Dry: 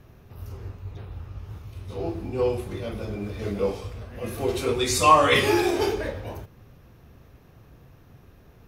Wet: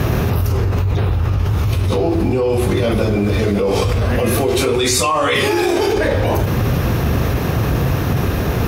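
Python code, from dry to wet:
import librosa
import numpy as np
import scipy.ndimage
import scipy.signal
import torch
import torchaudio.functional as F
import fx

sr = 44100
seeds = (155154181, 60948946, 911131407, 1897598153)

y = scipy.signal.sosfilt(scipy.signal.butter(2, 48.0, 'highpass', fs=sr, output='sos'), x)
y = fx.env_flatten(y, sr, amount_pct=100)
y = y * librosa.db_to_amplitude(-4.5)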